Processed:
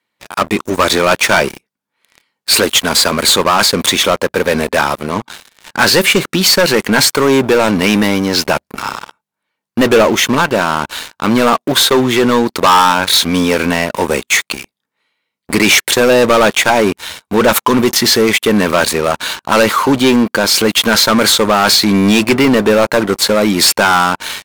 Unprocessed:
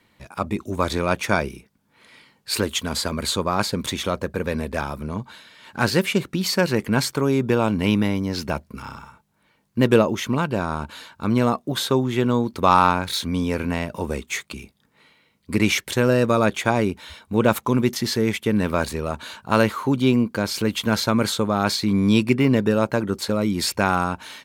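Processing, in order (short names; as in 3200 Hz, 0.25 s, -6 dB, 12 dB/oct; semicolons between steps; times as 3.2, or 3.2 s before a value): HPF 540 Hz 6 dB/oct; sample leveller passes 5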